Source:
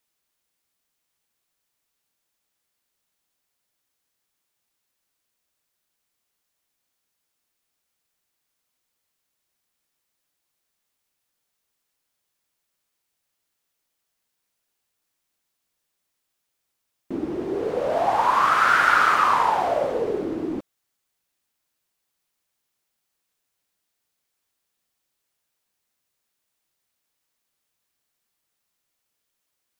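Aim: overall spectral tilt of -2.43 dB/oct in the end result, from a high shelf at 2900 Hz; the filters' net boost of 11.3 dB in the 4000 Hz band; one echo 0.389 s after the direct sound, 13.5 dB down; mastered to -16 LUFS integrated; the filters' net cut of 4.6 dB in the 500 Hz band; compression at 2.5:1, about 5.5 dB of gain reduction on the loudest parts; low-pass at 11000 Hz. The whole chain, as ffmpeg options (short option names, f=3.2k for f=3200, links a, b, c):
-af "lowpass=11k,equalizer=f=500:t=o:g=-6.5,highshelf=f=2.9k:g=8,equalizer=f=4k:t=o:g=8.5,acompressor=threshold=-20dB:ratio=2.5,aecho=1:1:389:0.211,volume=7.5dB"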